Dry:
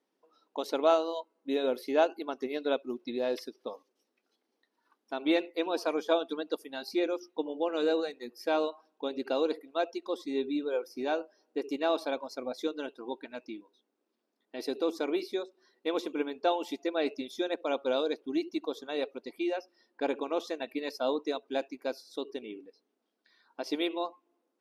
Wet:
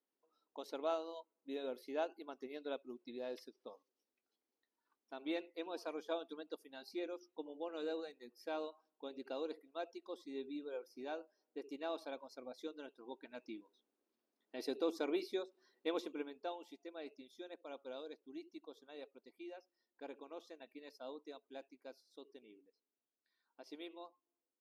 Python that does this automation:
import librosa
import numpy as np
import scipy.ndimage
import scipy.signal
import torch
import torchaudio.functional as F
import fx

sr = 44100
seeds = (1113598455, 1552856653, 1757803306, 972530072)

y = fx.gain(x, sr, db=fx.line((13.01, -13.5), (13.55, -6.5), (15.88, -6.5), (16.66, -19.0)))